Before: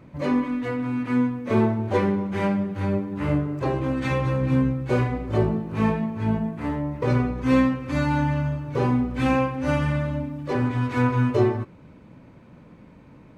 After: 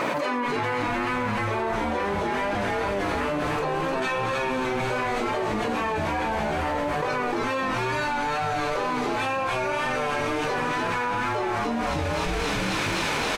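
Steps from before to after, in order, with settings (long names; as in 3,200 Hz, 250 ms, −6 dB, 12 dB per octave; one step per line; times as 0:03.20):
high-pass filter 670 Hz 12 dB per octave
notch filter 2,100 Hz, Q 14
echo with shifted repeats 302 ms, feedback 49%, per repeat −140 Hz, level −3 dB
tape wow and flutter 26 cents
flanger 0.71 Hz, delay 8.7 ms, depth 6.2 ms, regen +65%
on a send: delay with a high-pass on its return 264 ms, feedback 84%, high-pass 3,400 Hz, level −8 dB
on the sum: envelope flattener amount 100%
level +1.5 dB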